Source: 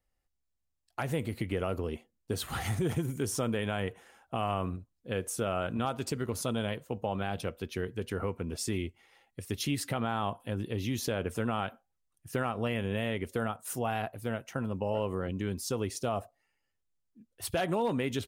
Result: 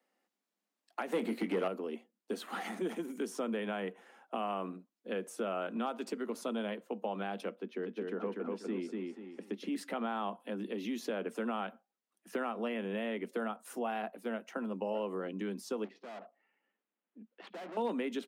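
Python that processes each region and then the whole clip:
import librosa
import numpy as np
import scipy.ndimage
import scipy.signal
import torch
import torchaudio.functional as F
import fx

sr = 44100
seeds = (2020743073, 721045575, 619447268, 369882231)

y = fx.chain(x, sr, fx.highpass(hz=50.0, slope=12),
    fx.doubler(ms=22.0, db=-11.0),
    fx.leveller(passes=2), at=(1.12, 1.68))
y = fx.chain(y, sr, fx.lowpass(hz=1200.0, slope=6),
    fx.echo_feedback(ms=243, feedback_pct=28, wet_db=-3.0), at=(7.55, 9.76))
y = fx.chain(y, sr, fx.lowpass(hz=3100.0, slope=24),
    fx.tube_stage(drive_db=44.0, bias=0.45), at=(15.84, 17.77))
y = scipy.signal.sosfilt(scipy.signal.butter(16, 190.0, 'highpass', fs=sr, output='sos'), y)
y = fx.high_shelf(y, sr, hz=4400.0, db=-11.0)
y = fx.band_squash(y, sr, depth_pct=40)
y = F.gain(torch.from_numpy(y), -3.0).numpy()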